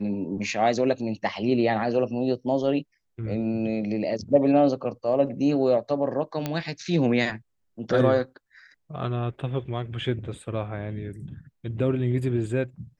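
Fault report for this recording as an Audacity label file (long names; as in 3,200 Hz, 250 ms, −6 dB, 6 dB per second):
6.460000	6.460000	click −13 dBFS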